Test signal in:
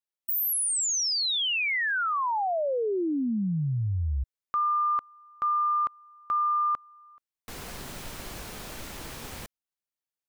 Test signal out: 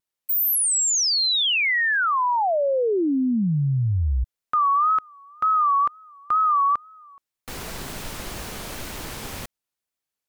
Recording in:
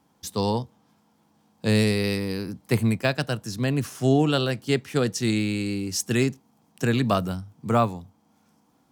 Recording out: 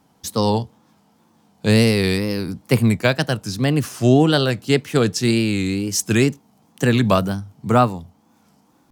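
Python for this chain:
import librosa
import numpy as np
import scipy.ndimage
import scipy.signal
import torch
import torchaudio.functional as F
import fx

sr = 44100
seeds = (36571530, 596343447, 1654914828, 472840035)

y = fx.wow_flutter(x, sr, seeds[0], rate_hz=2.1, depth_cents=120.0)
y = y * 10.0 ** (6.0 / 20.0)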